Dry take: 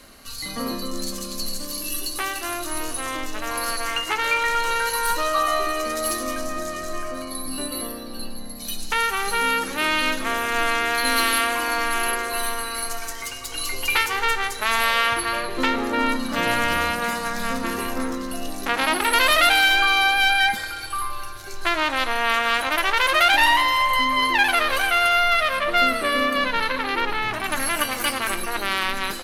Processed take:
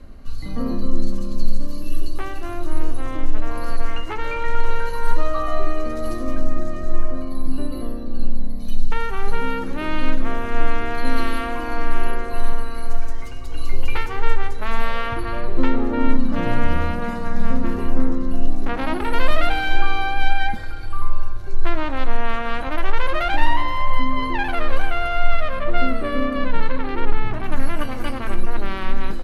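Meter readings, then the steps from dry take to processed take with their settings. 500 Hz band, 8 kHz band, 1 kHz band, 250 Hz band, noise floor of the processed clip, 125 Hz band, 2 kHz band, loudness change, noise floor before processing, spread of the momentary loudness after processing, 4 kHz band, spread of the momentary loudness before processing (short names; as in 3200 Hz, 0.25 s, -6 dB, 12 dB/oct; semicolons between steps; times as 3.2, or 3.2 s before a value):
-0.5 dB, -18.5 dB, -4.5 dB, +4.0 dB, -26 dBFS, +13.0 dB, -8.5 dB, -5.0 dB, -33 dBFS, 9 LU, -12.5 dB, 13 LU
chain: tilt -4.5 dB/oct; gain -4.5 dB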